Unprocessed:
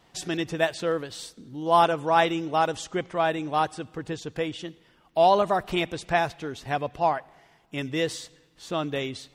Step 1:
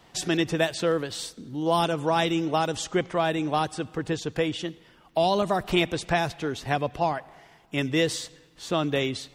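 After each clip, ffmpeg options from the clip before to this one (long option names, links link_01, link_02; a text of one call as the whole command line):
ffmpeg -i in.wav -filter_complex "[0:a]acrossover=split=330|3000[link_01][link_02][link_03];[link_02]acompressor=threshold=-27dB:ratio=6[link_04];[link_01][link_04][link_03]amix=inputs=3:normalize=0,volume=4.5dB" out.wav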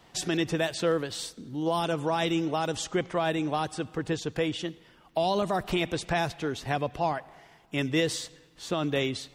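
ffmpeg -i in.wav -af "alimiter=limit=-15dB:level=0:latency=1:release=33,volume=-1.5dB" out.wav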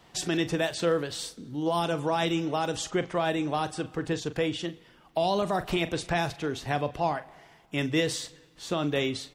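ffmpeg -i in.wav -filter_complex "[0:a]asplit=2[link_01][link_02];[link_02]adelay=41,volume=-13dB[link_03];[link_01][link_03]amix=inputs=2:normalize=0" out.wav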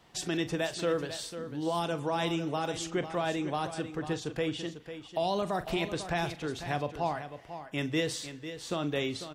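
ffmpeg -i in.wav -af "aecho=1:1:497:0.282,volume=-4dB" out.wav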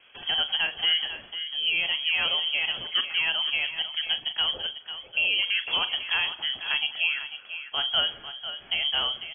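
ffmpeg -i in.wav -af "lowpass=frequency=2900:width_type=q:width=0.5098,lowpass=frequency=2900:width_type=q:width=0.6013,lowpass=frequency=2900:width_type=q:width=0.9,lowpass=frequency=2900:width_type=q:width=2.563,afreqshift=-3400,volume=5dB" out.wav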